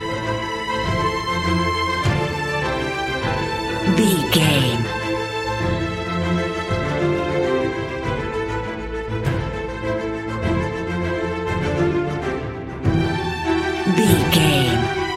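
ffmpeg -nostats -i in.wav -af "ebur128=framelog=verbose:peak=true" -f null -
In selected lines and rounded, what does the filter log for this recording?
Integrated loudness:
  I:         -20.7 LUFS
  Threshold: -30.7 LUFS
Loudness range:
  LRA:         4.7 LU
  Threshold: -41.2 LUFS
  LRA low:   -23.9 LUFS
  LRA high:  -19.2 LUFS
True peak:
  Peak:       -1.8 dBFS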